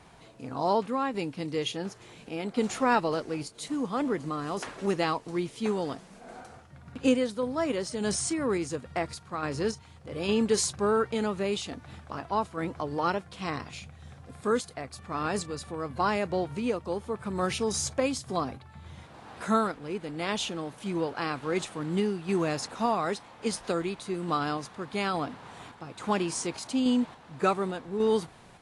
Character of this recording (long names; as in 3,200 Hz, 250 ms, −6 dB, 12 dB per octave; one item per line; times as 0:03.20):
a quantiser's noise floor 12 bits, dither none
sample-and-hold tremolo 3.5 Hz
AAC